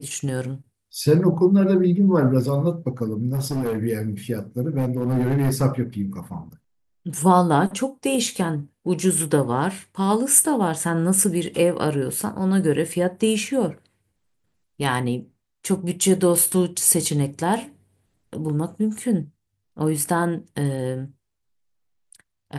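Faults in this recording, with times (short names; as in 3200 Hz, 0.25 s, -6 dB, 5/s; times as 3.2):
3.33–3.79 clipped -20.5 dBFS
4.78–5.63 clipped -16.5 dBFS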